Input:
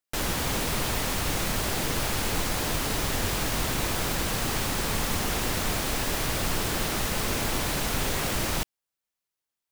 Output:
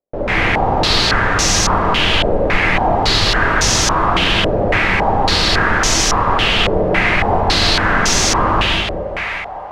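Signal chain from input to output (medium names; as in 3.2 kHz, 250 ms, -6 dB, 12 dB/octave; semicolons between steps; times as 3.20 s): two-band feedback delay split 560 Hz, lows 206 ms, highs 595 ms, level -7 dB; in parallel at +1 dB: peak limiter -20 dBFS, peak gain reduction 6.5 dB; on the sum: gated-style reverb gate 210 ms rising, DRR -5 dB; step-sequenced low-pass 3.6 Hz 570–6000 Hz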